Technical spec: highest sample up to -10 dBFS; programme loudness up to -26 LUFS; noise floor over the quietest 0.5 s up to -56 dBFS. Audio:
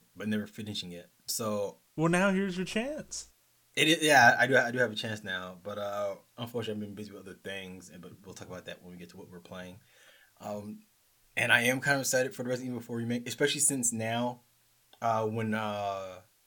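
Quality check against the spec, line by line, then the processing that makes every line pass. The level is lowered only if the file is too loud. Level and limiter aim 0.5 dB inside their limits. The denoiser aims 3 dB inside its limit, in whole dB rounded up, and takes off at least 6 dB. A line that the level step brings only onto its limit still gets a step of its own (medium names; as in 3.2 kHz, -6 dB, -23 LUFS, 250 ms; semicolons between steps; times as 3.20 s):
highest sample -7.0 dBFS: fail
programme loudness -29.5 LUFS: pass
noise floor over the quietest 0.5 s -68 dBFS: pass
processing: peak limiter -10.5 dBFS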